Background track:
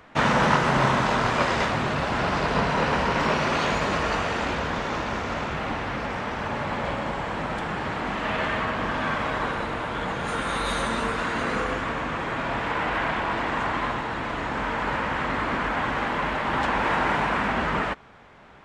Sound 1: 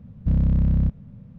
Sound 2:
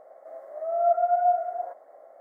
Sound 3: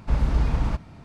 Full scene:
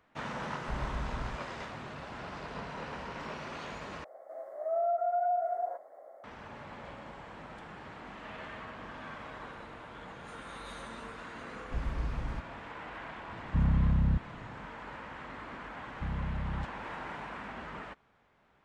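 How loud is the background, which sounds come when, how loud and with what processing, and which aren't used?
background track −18 dB
0:00.60: mix in 3 −16 dB
0:04.04: overwrite with 2 −1.5 dB + brickwall limiter −23 dBFS
0:11.64: mix in 3 −13 dB
0:13.28: mix in 1 −7 dB
0:15.75: mix in 1 −16 dB

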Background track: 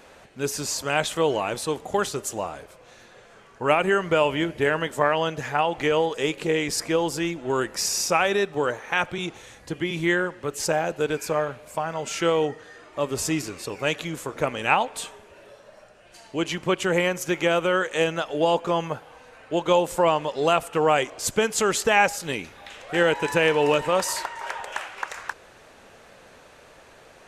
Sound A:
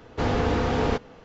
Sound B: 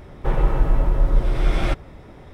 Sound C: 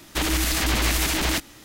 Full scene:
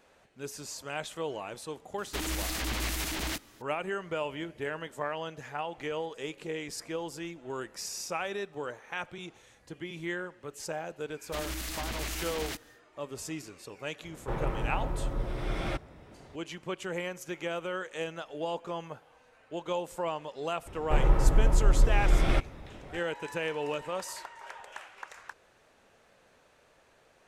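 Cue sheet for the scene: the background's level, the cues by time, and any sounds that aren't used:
background track −13 dB
0:01.98: mix in C −10.5 dB
0:11.17: mix in C −14 dB, fades 0.10 s
0:14.03: mix in B −8 dB + high-pass filter 82 Hz 6 dB per octave
0:20.66: mix in B −4.5 dB
not used: A

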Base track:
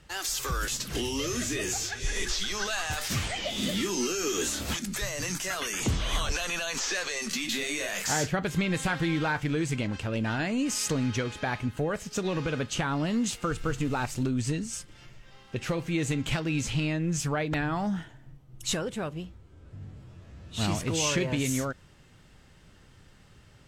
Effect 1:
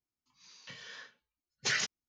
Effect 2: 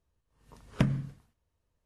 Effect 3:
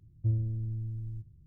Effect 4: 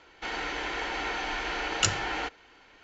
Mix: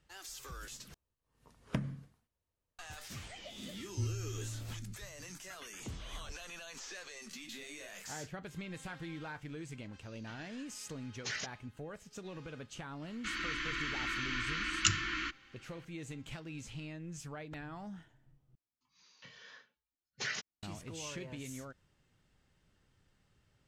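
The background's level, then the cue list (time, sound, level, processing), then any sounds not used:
base track −16.5 dB
0:00.94: overwrite with 2 −7.5 dB + low-shelf EQ 110 Hz −5.5 dB
0:03.73: mix in 3 −11 dB + comb filter 2 ms, depth 88%
0:09.60: mix in 1 −8.5 dB
0:13.02: mix in 4 −3 dB + Chebyshev band-stop filter 340–1,100 Hz, order 4
0:18.55: overwrite with 1 −5.5 dB + high-shelf EQ 4,600 Hz −5.5 dB

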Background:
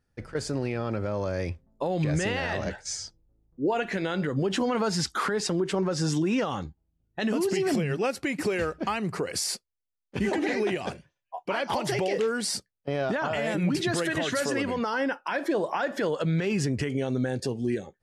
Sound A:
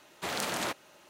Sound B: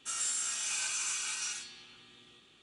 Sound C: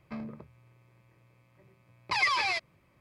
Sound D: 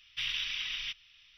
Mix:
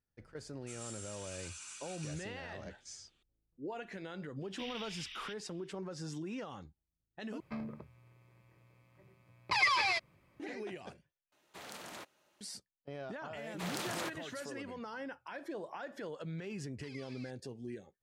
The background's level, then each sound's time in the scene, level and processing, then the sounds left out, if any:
background −16 dB
0:00.61: mix in B −16.5 dB + harmonic and percussive parts rebalanced percussive +5 dB
0:04.41: mix in D −12 dB
0:07.40: overwrite with C −2 dB
0:11.32: overwrite with A −15 dB
0:13.37: mix in A −7 dB
0:14.72: mix in C −9 dB + guitar amp tone stack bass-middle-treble 6-0-2

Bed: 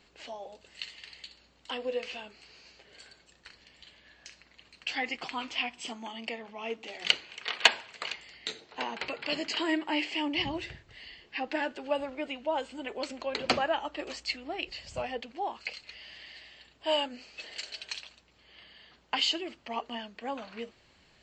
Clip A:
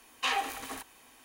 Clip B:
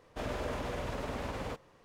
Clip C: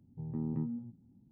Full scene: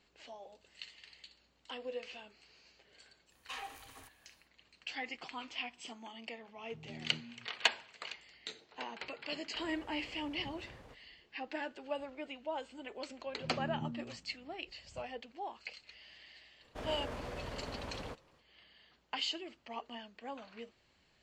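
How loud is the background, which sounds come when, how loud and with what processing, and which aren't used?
bed −8.5 dB
0:03.26: mix in A −14.5 dB, fades 0.10 s + low shelf with overshoot 150 Hz +7 dB, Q 3
0:06.55: mix in C −13 dB
0:09.39: mix in B −18 dB
0:13.25: mix in C −5.5 dB
0:16.59: mix in B −6 dB, fades 0.05 s + highs frequency-modulated by the lows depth 0.23 ms

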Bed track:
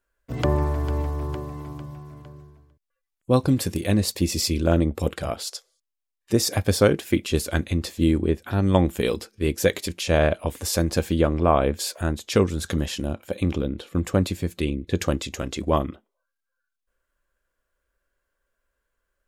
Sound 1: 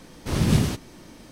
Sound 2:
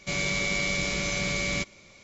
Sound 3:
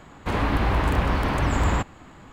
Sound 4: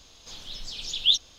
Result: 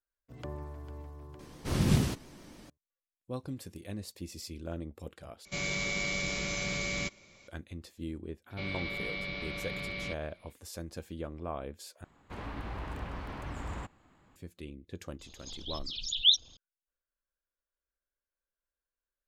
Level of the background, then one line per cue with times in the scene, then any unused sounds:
bed track −19.5 dB
0:01.39: mix in 1 −6 dB + pitch vibrato 7.1 Hz 99 cents
0:05.45: overwrite with 2 −5.5 dB
0:08.50: mix in 2 −9.5 dB + Butterworth low-pass 4,400 Hz 48 dB per octave
0:12.04: overwrite with 3 −17.5 dB + phase distortion by the signal itself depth 0.08 ms
0:15.19: mix in 4 −2 dB + spectral envelope exaggerated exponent 2

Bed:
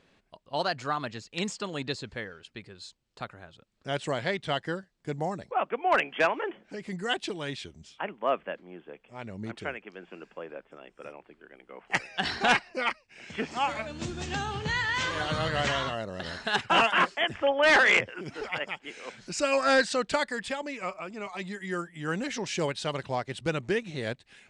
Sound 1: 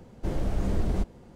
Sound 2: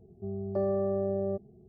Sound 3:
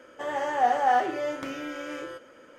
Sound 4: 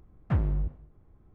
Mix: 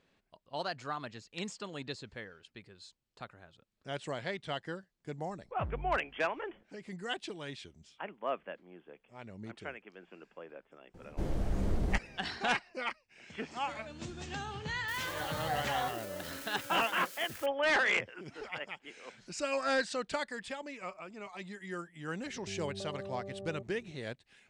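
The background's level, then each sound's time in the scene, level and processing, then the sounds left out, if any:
bed −8 dB
0:05.29: mix in 4 −14 dB
0:10.94: mix in 1 −5 dB
0:14.88: mix in 3 −14 dB + spike at every zero crossing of −22 dBFS
0:22.25: mix in 2 −2 dB + downward compressor, threshold −39 dBFS

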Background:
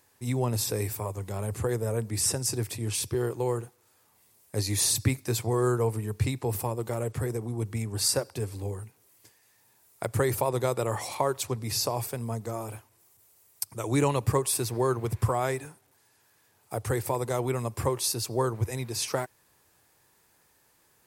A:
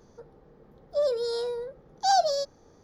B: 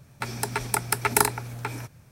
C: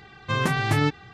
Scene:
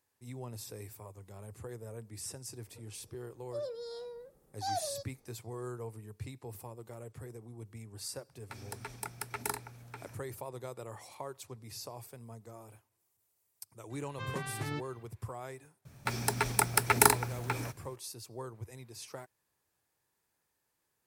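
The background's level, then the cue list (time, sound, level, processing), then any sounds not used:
background −16 dB
0:02.58: mix in A −13.5 dB
0:08.29: mix in B −15.5 dB
0:13.90: mix in C −16 dB
0:15.85: mix in B −2 dB + noise that follows the level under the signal 25 dB

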